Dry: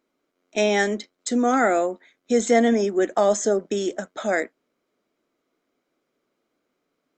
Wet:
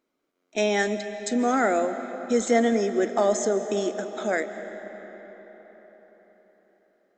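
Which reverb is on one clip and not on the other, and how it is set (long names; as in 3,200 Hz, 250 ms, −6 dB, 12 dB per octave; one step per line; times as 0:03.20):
comb and all-pass reverb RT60 4.8 s, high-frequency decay 0.65×, pre-delay 105 ms, DRR 9.5 dB
level −3 dB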